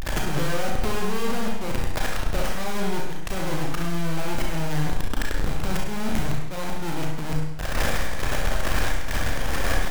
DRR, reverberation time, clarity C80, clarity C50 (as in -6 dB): -2.0 dB, 0.95 s, 5.0 dB, 1.5 dB